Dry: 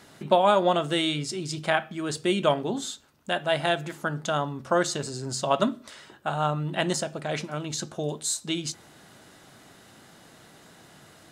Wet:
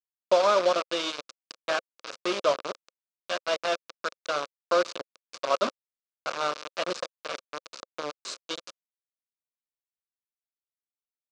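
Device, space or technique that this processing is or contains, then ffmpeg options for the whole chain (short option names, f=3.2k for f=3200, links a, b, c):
hand-held game console: -af "acrusher=bits=3:mix=0:aa=0.000001,highpass=410,equalizer=f=530:t=q:w=4:g=6,equalizer=f=820:t=q:w=4:g=-9,equalizer=f=1.2k:t=q:w=4:g=5,equalizer=f=1.9k:t=q:w=4:g=-9,equalizer=f=3.2k:t=q:w=4:g=-5,lowpass=f=5.5k:w=0.5412,lowpass=f=5.5k:w=1.3066,volume=-2dB"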